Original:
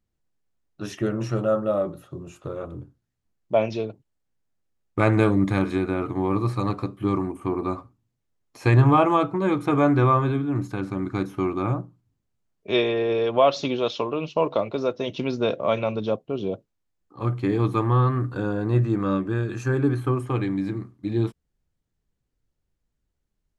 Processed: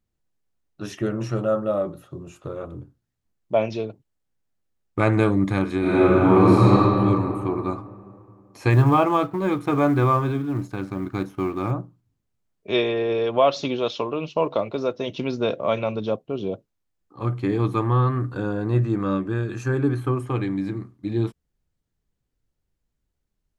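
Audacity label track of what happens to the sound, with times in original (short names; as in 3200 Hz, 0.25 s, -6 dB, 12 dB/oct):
5.790000	6.710000	reverb throw, RT60 2.6 s, DRR -10.5 dB
8.700000	11.710000	G.711 law mismatch coded by A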